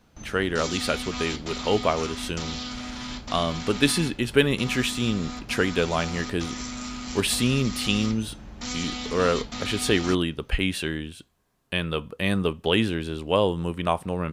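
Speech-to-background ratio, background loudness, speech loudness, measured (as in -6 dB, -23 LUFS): 8.0 dB, -34.0 LUFS, -26.0 LUFS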